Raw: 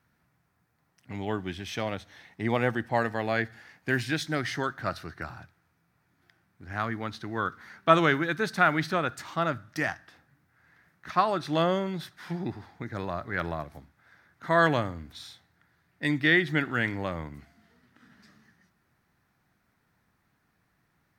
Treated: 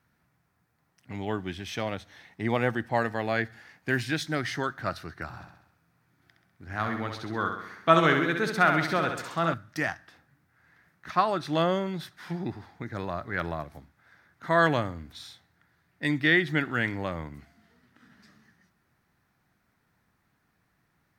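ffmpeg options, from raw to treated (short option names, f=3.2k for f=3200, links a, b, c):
-filter_complex "[0:a]asettb=1/sr,asplit=3[a][b][c];[a]atrim=end=5.274[d];[b]atrim=start=5.27:end=9.54,asetpts=PTS-STARTPTS,afade=t=in:d=0.004:c=qsin,afade=t=out:st=4.266:d=0.004:c=qsin,aecho=1:1:66|132|198|264|330|396|462:0.501|0.276|0.152|0.0834|0.0459|0.0252|0.0139,atrim=end_sample=188307[e];[c]atrim=start=9.536[f];[d][e]acrossfade=d=0.004:c1=hsin:c2=qsin[g];[g][f]acrossfade=d=0.004:c1=qsin:c2=hsin"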